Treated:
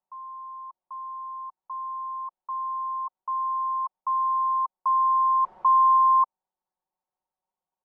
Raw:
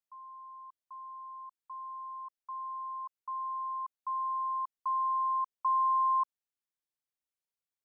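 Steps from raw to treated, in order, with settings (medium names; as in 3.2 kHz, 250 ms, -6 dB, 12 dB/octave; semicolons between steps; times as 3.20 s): 5.42–5.97 s: jump at every zero crossing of -43 dBFS; resonant low-pass 870 Hz, resonance Q 4.9; comb 5.4 ms, depth 81%; trim +4 dB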